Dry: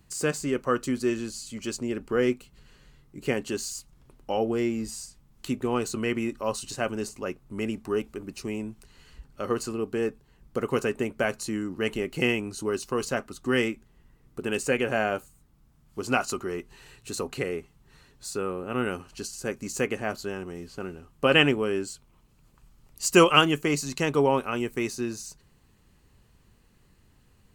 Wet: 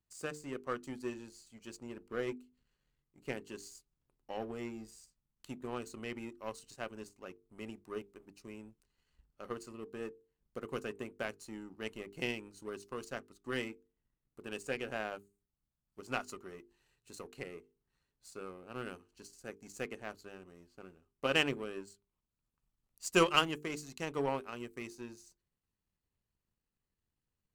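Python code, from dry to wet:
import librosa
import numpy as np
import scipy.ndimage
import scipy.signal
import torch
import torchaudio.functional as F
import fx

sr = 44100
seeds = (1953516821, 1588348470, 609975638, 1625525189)

y = fx.power_curve(x, sr, exponent=1.4)
y = fx.hum_notches(y, sr, base_hz=50, count=9)
y = F.gain(torch.from_numpy(y), -6.5).numpy()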